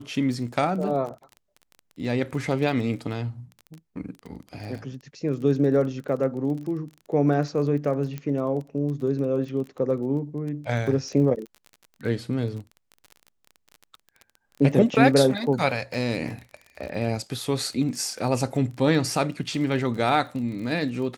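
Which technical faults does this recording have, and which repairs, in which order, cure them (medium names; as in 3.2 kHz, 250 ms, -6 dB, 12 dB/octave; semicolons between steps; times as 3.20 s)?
crackle 26 per s -33 dBFS
8.18 s: pop -20 dBFS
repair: de-click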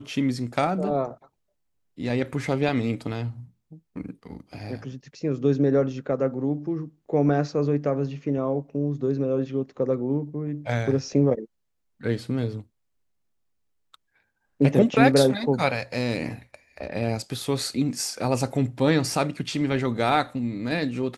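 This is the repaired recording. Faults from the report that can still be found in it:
nothing left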